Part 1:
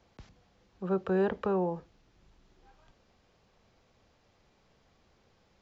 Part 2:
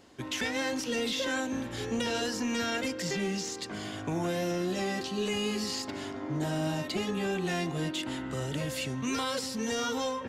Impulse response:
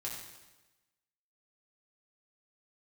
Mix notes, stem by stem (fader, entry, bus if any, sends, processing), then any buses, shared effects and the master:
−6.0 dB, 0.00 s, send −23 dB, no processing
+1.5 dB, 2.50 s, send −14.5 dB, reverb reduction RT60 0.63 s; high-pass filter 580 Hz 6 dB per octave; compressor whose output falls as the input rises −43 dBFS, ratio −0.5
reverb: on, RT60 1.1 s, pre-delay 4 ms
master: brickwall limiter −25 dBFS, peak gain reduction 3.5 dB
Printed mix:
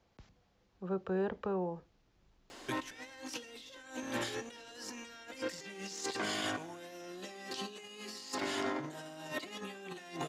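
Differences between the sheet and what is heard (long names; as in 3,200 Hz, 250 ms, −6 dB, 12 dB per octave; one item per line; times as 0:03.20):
stem 1: send off
stem 2: missing reverb reduction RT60 0.63 s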